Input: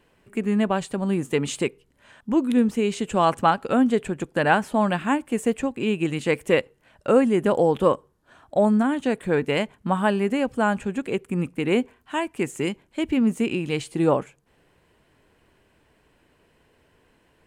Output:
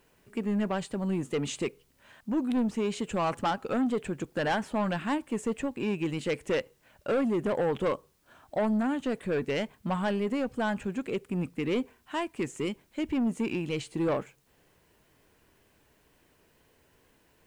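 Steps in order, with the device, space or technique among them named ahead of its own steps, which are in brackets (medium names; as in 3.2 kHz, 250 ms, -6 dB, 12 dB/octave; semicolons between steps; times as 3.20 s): compact cassette (saturation -18.5 dBFS, distortion -11 dB; low-pass 8.4 kHz 12 dB/octave; wow and flutter; white noise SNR 41 dB); trim -4 dB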